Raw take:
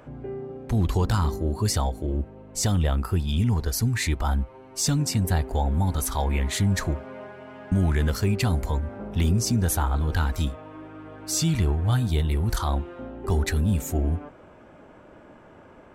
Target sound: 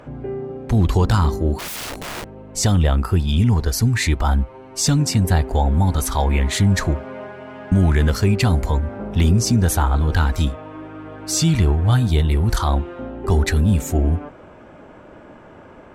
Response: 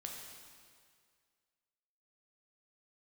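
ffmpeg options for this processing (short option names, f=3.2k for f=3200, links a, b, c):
-filter_complex "[0:a]highshelf=f=12k:g=-9.5,asplit=3[a][b][c];[a]afade=t=out:st=1.58:d=0.02[d];[b]aeval=exprs='(mod(37.6*val(0)+1,2)-1)/37.6':c=same,afade=t=in:st=1.58:d=0.02,afade=t=out:st=2.36:d=0.02[e];[c]afade=t=in:st=2.36:d=0.02[f];[d][e][f]amix=inputs=3:normalize=0,volume=6.5dB"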